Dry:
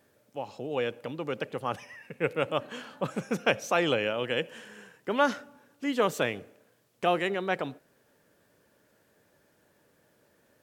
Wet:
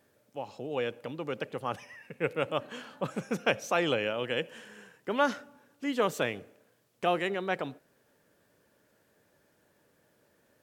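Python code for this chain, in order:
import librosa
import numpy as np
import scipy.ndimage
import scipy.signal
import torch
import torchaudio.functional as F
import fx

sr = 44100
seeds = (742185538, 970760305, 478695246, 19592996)

y = F.gain(torch.from_numpy(x), -2.0).numpy()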